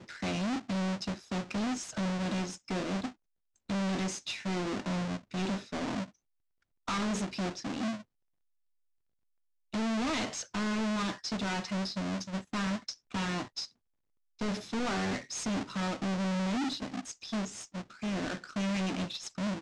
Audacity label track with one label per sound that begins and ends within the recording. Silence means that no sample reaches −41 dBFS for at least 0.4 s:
3.700000	6.040000	sound
6.880000	8.000000	sound
9.740000	13.650000	sound